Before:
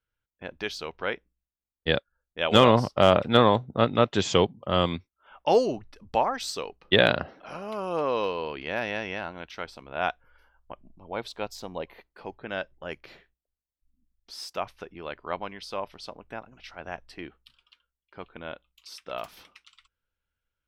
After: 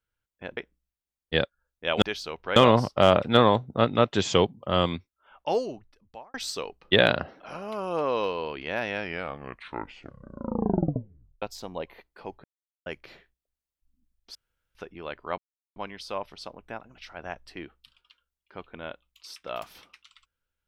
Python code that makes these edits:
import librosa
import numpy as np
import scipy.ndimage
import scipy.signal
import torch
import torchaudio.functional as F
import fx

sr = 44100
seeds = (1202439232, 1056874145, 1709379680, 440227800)

y = fx.edit(x, sr, fx.move(start_s=0.57, length_s=0.54, to_s=2.56),
    fx.fade_out_span(start_s=4.86, length_s=1.48),
    fx.tape_stop(start_s=8.86, length_s=2.56),
    fx.silence(start_s=12.44, length_s=0.42),
    fx.room_tone_fill(start_s=14.35, length_s=0.4),
    fx.insert_silence(at_s=15.38, length_s=0.38), tone=tone)